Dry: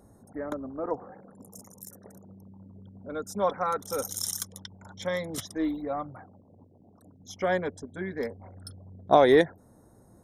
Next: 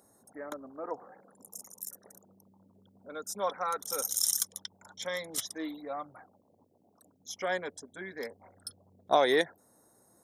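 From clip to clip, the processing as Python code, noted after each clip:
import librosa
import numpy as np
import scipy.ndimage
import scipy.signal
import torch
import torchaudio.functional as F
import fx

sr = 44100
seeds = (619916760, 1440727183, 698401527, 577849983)

y = fx.highpass(x, sr, hz=510.0, slope=6)
y = fx.high_shelf(y, sr, hz=3000.0, db=9.0)
y = y * 10.0 ** (-4.0 / 20.0)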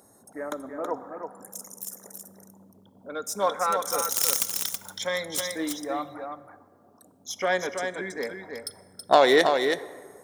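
y = fx.self_delay(x, sr, depth_ms=0.075)
y = y + 10.0 ** (-6.0 / 20.0) * np.pad(y, (int(325 * sr / 1000.0), 0))[:len(y)]
y = fx.rev_plate(y, sr, seeds[0], rt60_s=1.9, hf_ratio=0.5, predelay_ms=0, drr_db=15.0)
y = y * 10.0 ** (7.0 / 20.0)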